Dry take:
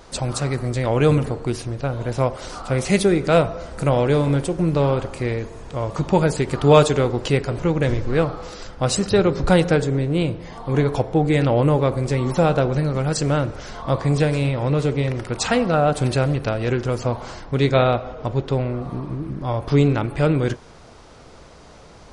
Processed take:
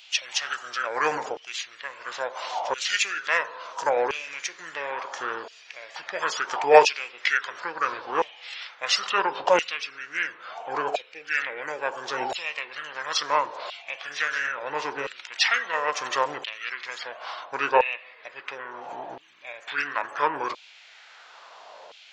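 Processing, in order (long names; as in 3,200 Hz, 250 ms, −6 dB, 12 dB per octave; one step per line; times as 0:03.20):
auto-filter high-pass saw down 0.73 Hz 950–4,100 Hz
formants moved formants −6 semitones
level +1 dB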